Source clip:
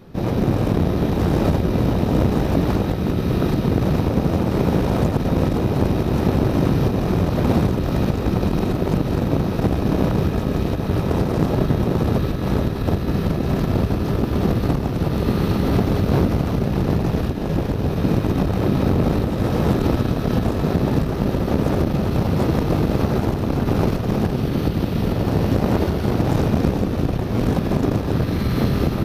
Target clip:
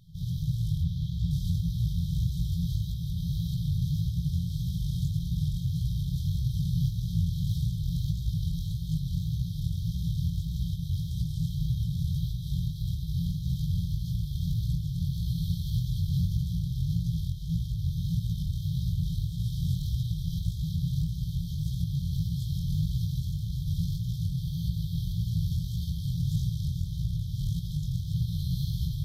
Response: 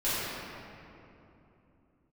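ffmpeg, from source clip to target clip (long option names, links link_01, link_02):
-filter_complex "[0:a]asettb=1/sr,asplit=3[link_01][link_02][link_03];[link_01]atrim=end=0.824[link_04];[link_02]atrim=start=0.82:end=1.31,asetpts=PTS-STARTPTS,afade=type=in:duration=0.004:curve=qsin,afade=type=out:start_time=0.486:duration=0.004:curve=qsin,acrossover=split=4900[link_05][link_06];[link_06]acompressor=threshold=-55dB:ratio=4:attack=1:release=60[link_07];[link_05][link_07]amix=inputs=2:normalize=0[link_08];[link_03]atrim=start=1.306[link_09];[link_04][link_08]acrossfade=duration=0.004:curve1=hsin:curve2=qsin[link_10];[link_10][link_09]acrossfade=duration=0.004:curve1=qsin:curve2=hsin,flanger=delay=16:depth=7.7:speed=1.7,afftfilt=real='re*(1-between(b*sr/4096,180,3100))':imag='im*(1-between(b*sr/4096,180,3100))':win_size=4096:overlap=0.75,volume=-4dB"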